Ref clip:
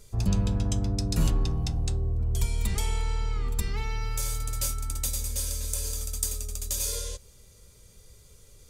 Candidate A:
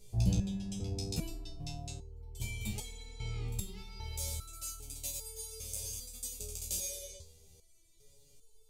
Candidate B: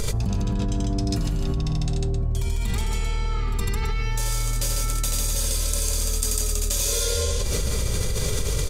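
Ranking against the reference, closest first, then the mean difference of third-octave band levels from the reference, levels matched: A, B; 6.0 dB, 8.5 dB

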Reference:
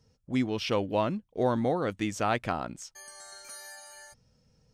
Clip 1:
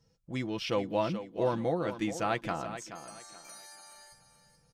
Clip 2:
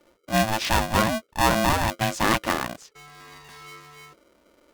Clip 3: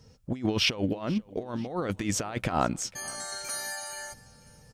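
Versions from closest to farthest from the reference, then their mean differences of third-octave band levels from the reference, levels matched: 1, 3, 2; 4.5 dB, 9.0 dB, 12.5 dB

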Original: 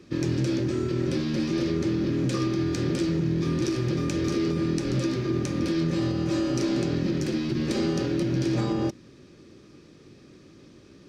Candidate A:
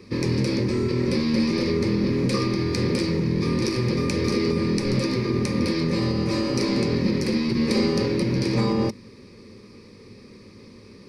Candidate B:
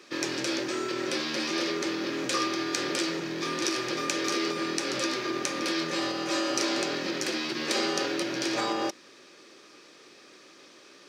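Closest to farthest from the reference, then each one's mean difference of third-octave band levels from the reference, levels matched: A, B; 2.5 dB, 10.0 dB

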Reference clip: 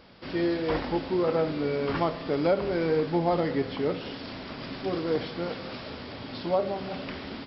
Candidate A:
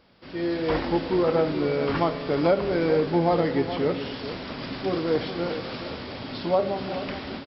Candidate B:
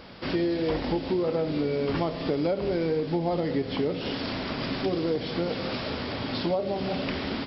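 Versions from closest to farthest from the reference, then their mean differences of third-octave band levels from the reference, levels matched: A, B; 1.0 dB, 3.0 dB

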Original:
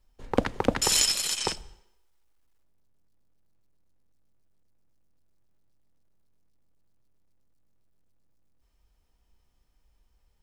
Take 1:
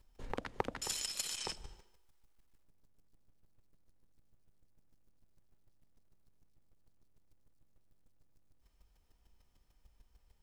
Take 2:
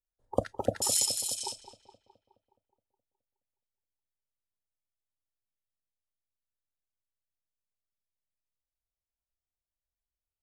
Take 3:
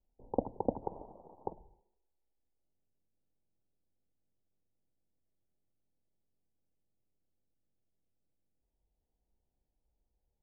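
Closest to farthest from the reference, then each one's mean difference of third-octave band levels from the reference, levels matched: 1, 2, 3; 4.5 dB, 8.5 dB, 16.5 dB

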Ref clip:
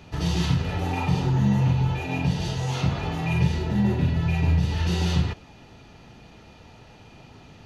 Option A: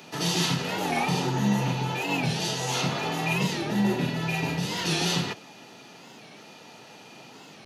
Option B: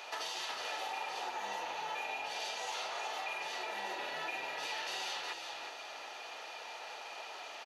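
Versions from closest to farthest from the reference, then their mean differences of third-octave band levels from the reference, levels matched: A, B; 7.0 dB, 15.5 dB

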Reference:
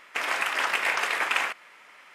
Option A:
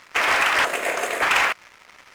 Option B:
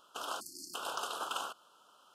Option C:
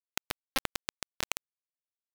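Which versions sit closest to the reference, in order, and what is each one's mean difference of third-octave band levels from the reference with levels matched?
A, B, C; 3.5 dB, 9.0 dB, 16.0 dB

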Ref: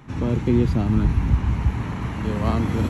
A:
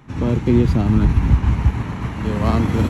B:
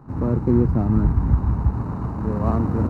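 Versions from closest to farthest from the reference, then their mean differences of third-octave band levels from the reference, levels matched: A, B; 1.0 dB, 5.5 dB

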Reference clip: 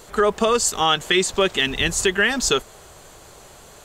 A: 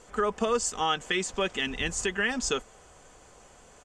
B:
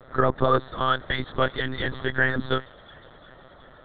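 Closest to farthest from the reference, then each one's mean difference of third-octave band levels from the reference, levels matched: A, B; 2.5 dB, 10.0 dB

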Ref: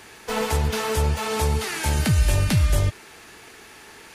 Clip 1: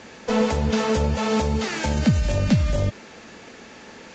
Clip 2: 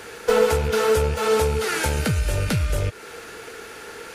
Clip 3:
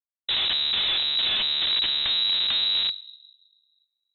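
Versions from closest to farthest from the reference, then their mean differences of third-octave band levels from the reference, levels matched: 2, 1, 3; 3.0 dB, 6.0 dB, 18.0 dB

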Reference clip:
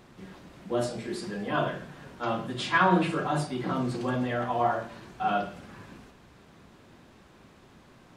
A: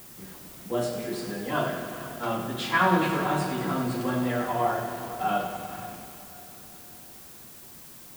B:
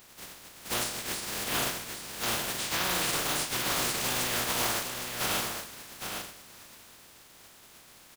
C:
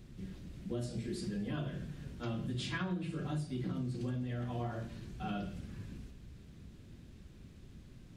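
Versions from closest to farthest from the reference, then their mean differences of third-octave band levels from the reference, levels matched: C, A, B; 5.5 dB, 7.0 dB, 12.5 dB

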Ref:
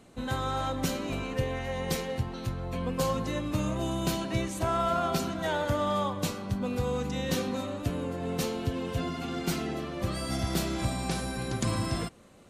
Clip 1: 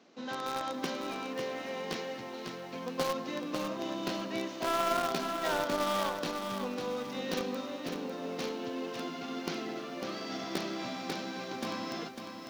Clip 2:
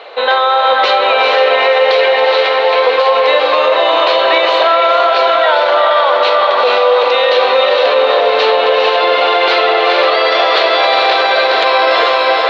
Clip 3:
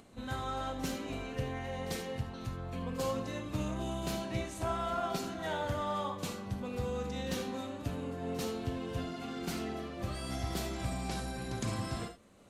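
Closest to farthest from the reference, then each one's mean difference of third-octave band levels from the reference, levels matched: 3, 1, 2; 2.0 dB, 6.5 dB, 16.5 dB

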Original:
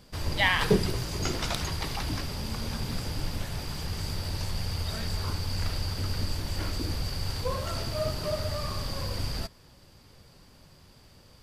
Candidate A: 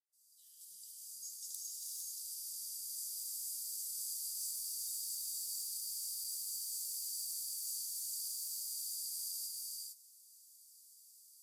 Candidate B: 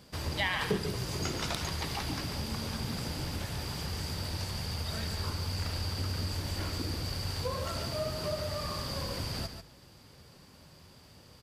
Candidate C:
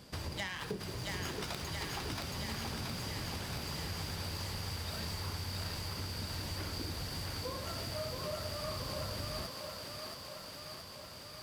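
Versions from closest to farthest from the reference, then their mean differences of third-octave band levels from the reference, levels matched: B, C, A; 2.5 dB, 6.0 dB, 26.5 dB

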